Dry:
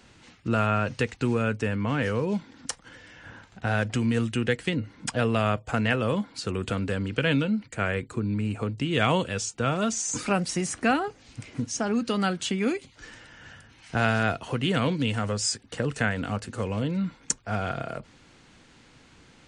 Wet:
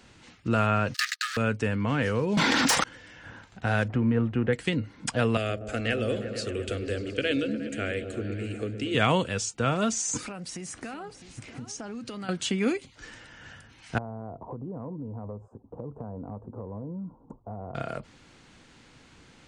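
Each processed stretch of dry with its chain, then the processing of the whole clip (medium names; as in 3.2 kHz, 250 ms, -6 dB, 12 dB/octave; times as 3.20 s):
0.94–1.37 s: waveshaping leveller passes 5 + rippled Chebyshev high-pass 1.2 kHz, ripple 9 dB
2.37–2.84 s: overdrive pedal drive 35 dB, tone 7.7 kHz, clips at -13.5 dBFS + level flattener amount 70%
3.88–4.53 s: companding laws mixed up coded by mu + low-pass 1.4 kHz
5.37–8.95 s: static phaser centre 400 Hz, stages 4 + delay with an opening low-pass 119 ms, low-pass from 400 Hz, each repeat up 1 oct, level -6 dB
10.17–12.29 s: compression, threshold -35 dBFS + delay 656 ms -13 dB
13.98–17.75 s: elliptic low-pass 1 kHz, stop band 50 dB + compression 4:1, threshold -35 dBFS
whole clip: none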